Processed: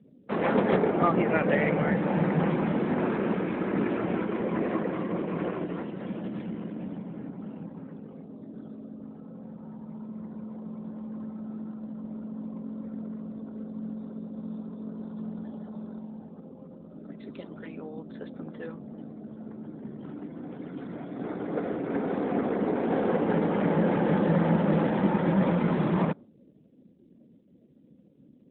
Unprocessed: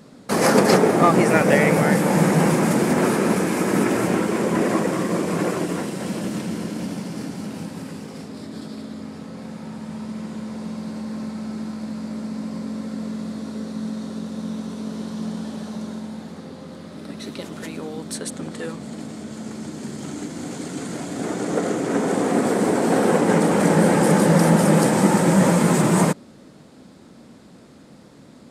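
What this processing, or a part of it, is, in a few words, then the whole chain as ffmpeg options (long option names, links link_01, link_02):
mobile call with aggressive noise cancelling: -af "highpass=100,afftdn=noise_reduction=28:noise_floor=-42,volume=-7.5dB" -ar 8000 -c:a libopencore_amrnb -b:a 12200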